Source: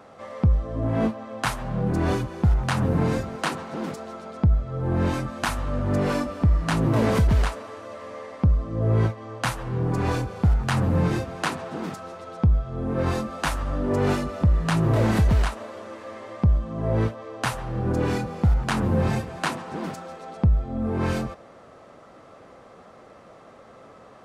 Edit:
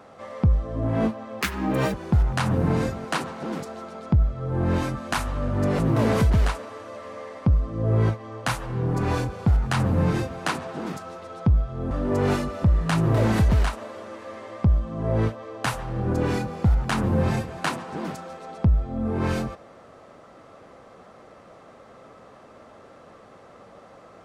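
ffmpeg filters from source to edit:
ffmpeg -i in.wav -filter_complex "[0:a]asplit=5[link_01][link_02][link_03][link_04][link_05];[link_01]atrim=end=1.414[link_06];[link_02]atrim=start=1.41:end=2.25,asetpts=PTS-STARTPTS,asetrate=70119,aresample=44100,atrim=end_sample=23298,asetpts=PTS-STARTPTS[link_07];[link_03]atrim=start=2.246:end=6.102[link_08];[link_04]atrim=start=6.758:end=12.882[link_09];[link_05]atrim=start=13.698[link_10];[link_06][link_07]acrossfade=duration=0.004:curve1=hsin:curve2=hsin[link_11];[link_11][link_08]acrossfade=duration=0.004:curve1=hsin:curve2=hsin[link_12];[link_12][link_09]acrossfade=duration=0.004:curve1=hsin:curve2=hsin[link_13];[link_13][link_10]acrossfade=duration=0.004:curve1=hsin:curve2=hsin" out.wav

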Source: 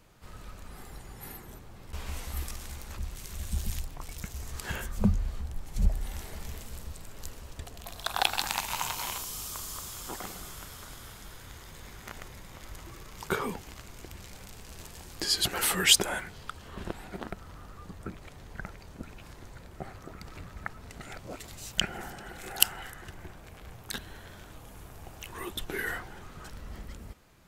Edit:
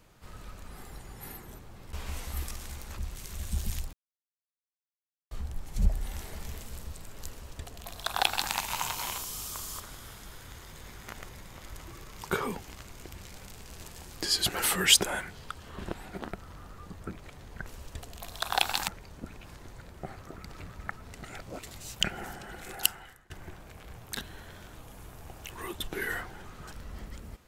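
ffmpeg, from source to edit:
ffmpeg -i in.wav -filter_complex "[0:a]asplit=7[link_01][link_02][link_03][link_04][link_05][link_06][link_07];[link_01]atrim=end=3.93,asetpts=PTS-STARTPTS,afade=type=out:start_time=3.926:duration=0.004:curve=hsin[link_08];[link_02]atrim=start=3.93:end=5.31,asetpts=PTS-STARTPTS,volume=0[link_09];[link_03]atrim=start=5.31:end=9.802,asetpts=PTS-STARTPTS,afade=type=in:duration=0.004:curve=hsin[link_10];[link_04]atrim=start=10.788:end=18.652[link_11];[link_05]atrim=start=7.298:end=8.522[link_12];[link_06]atrim=start=18.648:end=23.07,asetpts=PTS-STARTPTS,afade=type=out:start_time=3.742:duration=0.68:silence=0.0707946[link_13];[link_07]atrim=start=23.07,asetpts=PTS-STARTPTS,afade=type=in:duration=0.004:curve=hsin:silence=0.0707946[link_14];[link_08][link_09][link_10]concat=n=3:v=0:a=1[link_15];[link_15][link_11]acrossfade=duration=0.004:curve1=hsin:curve2=hsin[link_16];[link_16][link_12]acrossfade=duration=0.004:curve1=hsin:curve2=hsin[link_17];[link_13][link_14]concat=n=2:v=0:a=1[link_18];[link_17][link_18]acrossfade=duration=0.004:curve1=hsin:curve2=hsin" out.wav

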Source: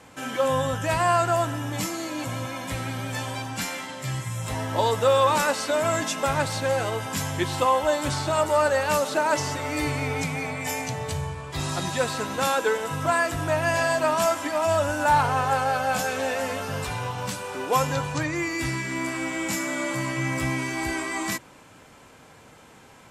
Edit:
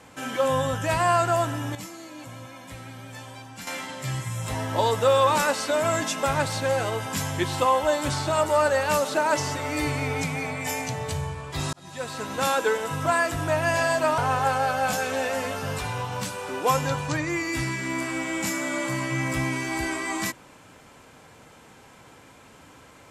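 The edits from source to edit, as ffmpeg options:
ffmpeg -i in.wav -filter_complex "[0:a]asplit=5[link_01][link_02][link_03][link_04][link_05];[link_01]atrim=end=1.752[link_06];[link_02]atrim=start=1.748:end=3.672,asetpts=PTS-STARTPTS,volume=-10dB[link_07];[link_03]atrim=start=3.668:end=11.73,asetpts=PTS-STARTPTS,afade=type=out:start_time=8.058:duration=0.004:curve=hsin[link_08];[link_04]atrim=start=11.73:end=14.182,asetpts=PTS-STARTPTS,afade=type=in:duration=0.74[link_09];[link_05]atrim=start=15.238[link_10];[link_06][link_07]acrossfade=duration=0.004:curve1=hsin:curve2=hsin[link_11];[link_08][link_09]concat=n=2:v=0:a=1[link_12];[link_11][link_12]acrossfade=duration=0.004:curve1=hsin:curve2=hsin[link_13];[link_13][link_10]acrossfade=duration=0.004:curve1=hsin:curve2=hsin" out.wav

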